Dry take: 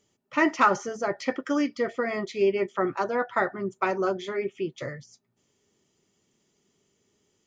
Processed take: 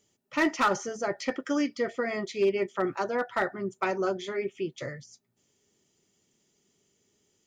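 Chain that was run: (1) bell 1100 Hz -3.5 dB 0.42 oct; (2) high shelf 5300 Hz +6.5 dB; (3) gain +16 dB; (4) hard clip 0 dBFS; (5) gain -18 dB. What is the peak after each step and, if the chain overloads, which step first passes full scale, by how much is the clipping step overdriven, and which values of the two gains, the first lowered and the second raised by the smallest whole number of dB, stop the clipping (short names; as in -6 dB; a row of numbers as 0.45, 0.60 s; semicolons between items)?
-10.0, -9.5, +6.5, 0.0, -18.0 dBFS; step 3, 6.5 dB; step 3 +9 dB, step 5 -11 dB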